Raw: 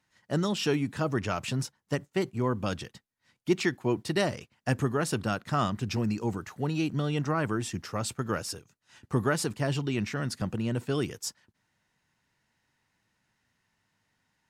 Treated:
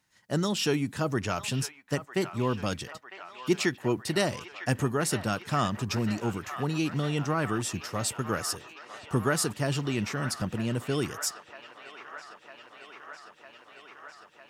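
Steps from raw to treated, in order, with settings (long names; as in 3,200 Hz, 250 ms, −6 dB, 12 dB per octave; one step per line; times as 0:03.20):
high-shelf EQ 5,400 Hz +7.5 dB
on a send: delay with a band-pass on its return 953 ms, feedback 78%, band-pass 1,500 Hz, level −9.5 dB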